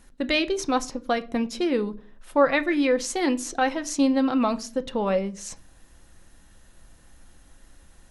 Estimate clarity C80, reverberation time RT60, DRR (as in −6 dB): 25.0 dB, 0.40 s, 9.0 dB